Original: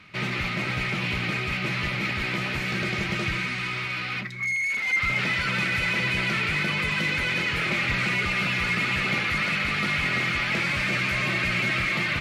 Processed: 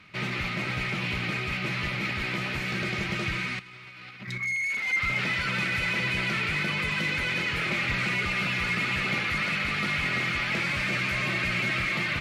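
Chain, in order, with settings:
0:03.59–0:04.38: compressor whose output falls as the input rises −37 dBFS, ratio −0.5
level −2.5 dB

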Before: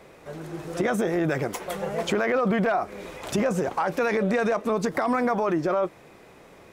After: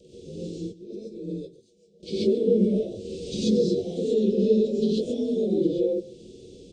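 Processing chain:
partials spread apart or drawn together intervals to 87%
in parallel at +1 dB: downward compressor 10 to 1, threshold −37 dBFS, peak gain reduction 16 dB
0:00.58–0:02.03: on the sum: noise gate −21 dBFS, range −31 dB
elliptic band-stop filter 460–3,300 Hz, stop band 50 dB
on a send: single-tap delay 139 ms −19.5 dB
on the sum: flanger 1.4 Hz, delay 1.8 ms, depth 4 ms, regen −72%
reverb whose tail is shaped and stops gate 160 ms rising, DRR −8 dB
level −1 dB

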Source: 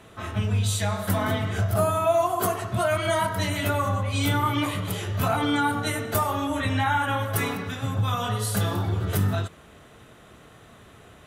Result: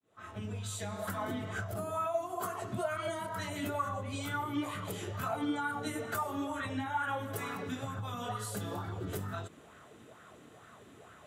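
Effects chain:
fade in at the beginning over 0.77 s
high-pass filter 89 Hz
parametric band 7,400 Hz +6 dB 0.32 octaves
downward compressor 4 to 1, threshold −29 dBFS, peak gain reduction 10.5 dB
auto-filter bell 2.2 Hz 250–1,500 Hz +11 dB
level −8.5 dB

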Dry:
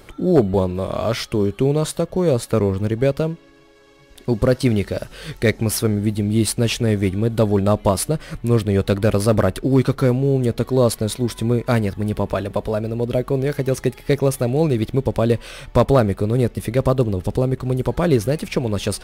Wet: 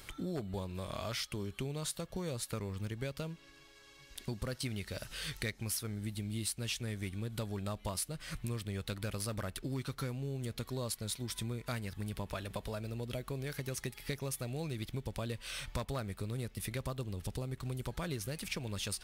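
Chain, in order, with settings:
guitar amp tone stack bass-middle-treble 5-5-5
downward compressor 4 to 1, threshold −42 dBFS, peak gain reduction 14.5 dB
level +5.5 dB

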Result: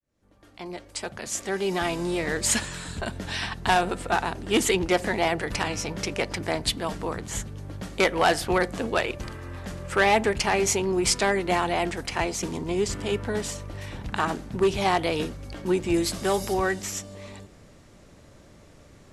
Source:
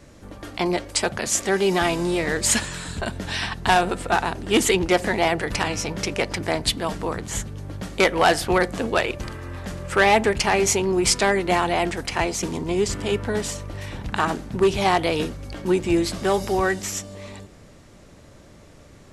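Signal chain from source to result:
fade in at the beginning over 2.34 s
0:15.94–0:16.54: high-shelf EQ 6,500 Hz +9.5 dB
level −3.5 dB

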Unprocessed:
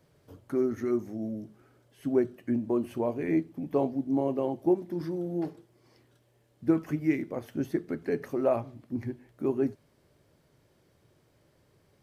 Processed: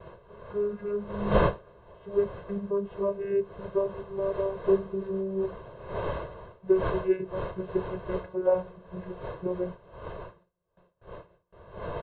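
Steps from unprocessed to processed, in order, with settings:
vocoder with a gliding carrier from G#3, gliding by −3 semitones
wind on the microphone 620 Hz −38 dBFS
noise gate with hold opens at −50 dBFS
Chebyshev low-pass with heavy ripple 4,100 Hz, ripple 3 dB
parametric band 2,300 Hz −5 dB 0.23 octaves
comb filter 1.9 ms, depth 82%
level +1.5 dB

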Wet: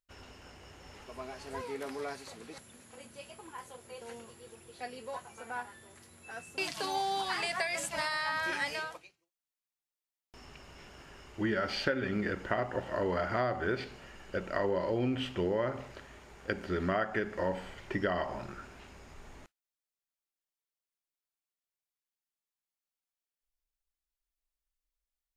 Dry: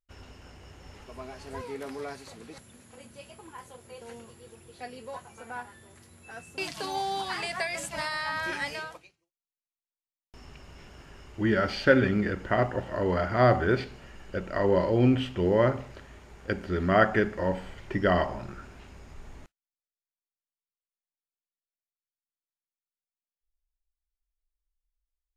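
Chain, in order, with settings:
low-shelf EQ 220 Hz −7.5 dB
downward compressor 10 to 1, threshold −27 dBFS, peak gain reduction 13 dB

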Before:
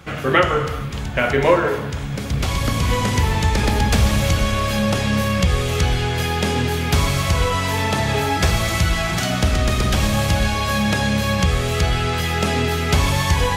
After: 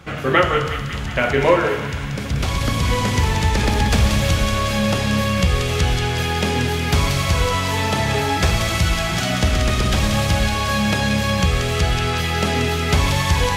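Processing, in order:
high-shelf EQ 8,900 Hz −5 dB
on a send: delay with a high-pass on its return 183 ms, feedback 69%, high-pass 2,100 Hz, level −5 dB

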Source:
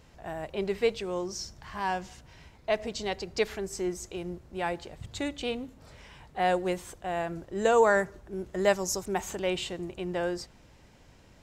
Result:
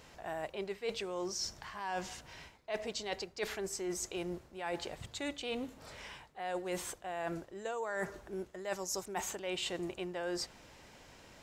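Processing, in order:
low-shelf EQ 260 Hz −11.5 dB
reversed playback
downward compressor 16 to 1, threshold −39 dBFS, peak gain reduction 20.5 dB
reversed playback
level +4.5 dB

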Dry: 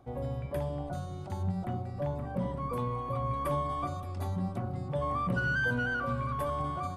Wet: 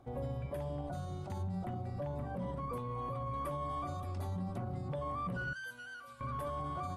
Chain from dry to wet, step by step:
0:05.53–0:06.21: first-order pre-emphasis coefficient 0.97
brickwall limiter −29.5 dBFS, peak gain reduction 9.5 dB
level −1.5 dB
Ogg Vorbis 64 kbit/s 48,000 Hz

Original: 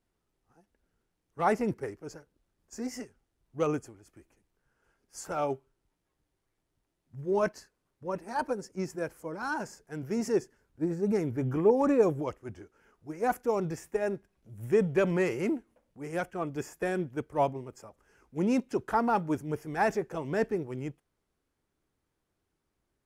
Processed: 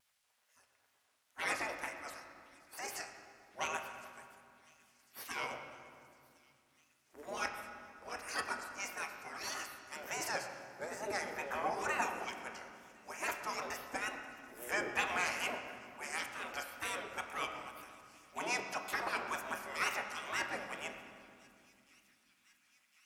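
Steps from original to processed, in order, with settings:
gate on every frequency bin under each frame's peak −20 dB weak
high-pass filter 300 Hz 6 dB per octave
in parallel at 0 dB: downward compressor, threshold −53 dBFS, peak gain reduction 16.5 dB
on the sum: tape wow and flutter 130 cents
delay with a high-pass on its return 1,055 ms, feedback 72%, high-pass 2,700 Hz, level −24 dB
on a send at −3.5 dB: convolution reverb RT60 2.4 s, pre-delay 6 ms
on the sum: level +4.5 dB

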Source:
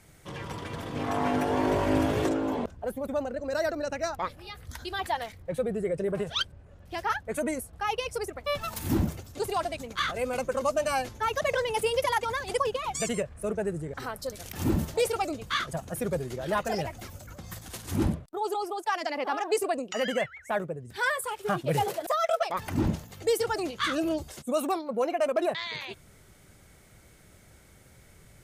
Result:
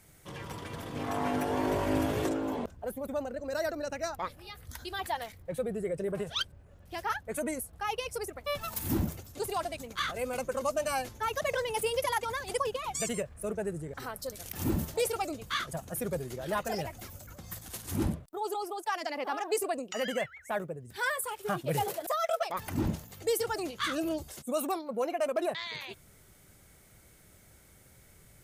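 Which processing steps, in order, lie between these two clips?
high-shelf EQ 11,000 Hz +12 dB
level −4 dB

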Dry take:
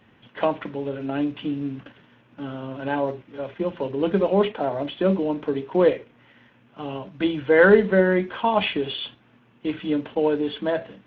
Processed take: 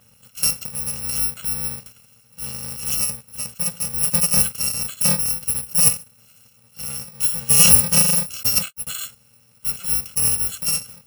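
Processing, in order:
samples in bit-reversed order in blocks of 128 samples
0:08.43–0:08.87: noise gate −21 dBFS, range −55 dB
level +2 dB

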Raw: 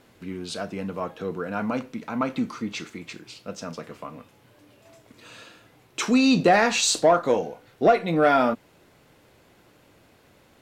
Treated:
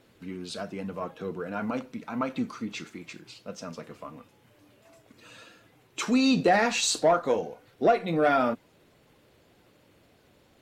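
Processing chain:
spectral magnitudes quantised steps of 15 dB
level −3.5 dB

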